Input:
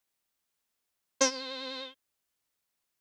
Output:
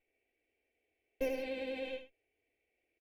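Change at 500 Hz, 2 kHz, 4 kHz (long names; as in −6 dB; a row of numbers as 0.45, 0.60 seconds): −1.5, −6.5, −15.0 decibels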